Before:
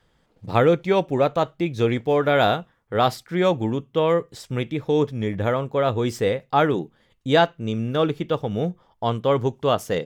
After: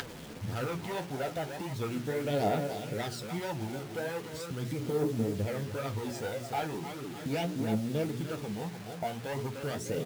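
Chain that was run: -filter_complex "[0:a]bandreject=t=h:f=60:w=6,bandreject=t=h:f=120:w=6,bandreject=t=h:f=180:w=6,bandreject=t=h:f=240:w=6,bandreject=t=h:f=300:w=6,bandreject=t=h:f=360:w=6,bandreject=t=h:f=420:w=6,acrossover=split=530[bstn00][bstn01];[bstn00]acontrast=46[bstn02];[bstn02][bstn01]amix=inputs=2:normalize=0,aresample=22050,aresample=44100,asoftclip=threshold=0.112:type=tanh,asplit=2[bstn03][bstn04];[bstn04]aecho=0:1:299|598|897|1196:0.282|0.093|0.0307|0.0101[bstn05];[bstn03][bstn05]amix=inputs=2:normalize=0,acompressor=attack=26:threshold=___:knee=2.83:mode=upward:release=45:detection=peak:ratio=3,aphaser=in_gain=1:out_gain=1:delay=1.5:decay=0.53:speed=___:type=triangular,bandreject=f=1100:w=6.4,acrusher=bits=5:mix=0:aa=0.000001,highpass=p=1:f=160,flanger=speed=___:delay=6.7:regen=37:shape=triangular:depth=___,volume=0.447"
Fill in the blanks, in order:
0.0562, 0.39, 1.7, 7.7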